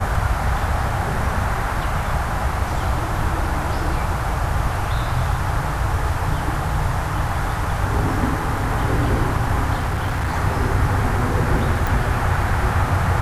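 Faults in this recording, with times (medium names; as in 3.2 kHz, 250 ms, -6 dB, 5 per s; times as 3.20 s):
9.76–10.29 s: clipped -18 dBFS
11.87 s: pop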